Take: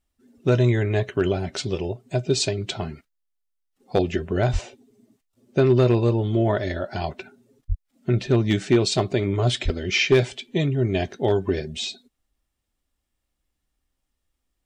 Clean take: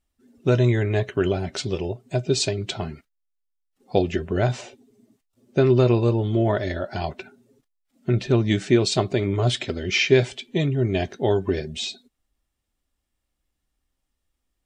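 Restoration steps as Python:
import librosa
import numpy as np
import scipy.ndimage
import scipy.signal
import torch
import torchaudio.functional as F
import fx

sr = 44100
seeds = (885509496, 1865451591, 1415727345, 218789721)

y = fx.fix_declip(x, sr, threshold_db=-9.5)
y = fx.highpass(y, sr, hz=140.0, slope=24, at=(4.52, 4.64), fade=0.02)
y = fx.highpass(y, sr, hz=140.0, slope=24, at=(7.68, 7.8), fade=0.02)
y = fx.highpass(y, sr, hz=140.0, slope=24, at=(9.64, 9.76), fade=0.02)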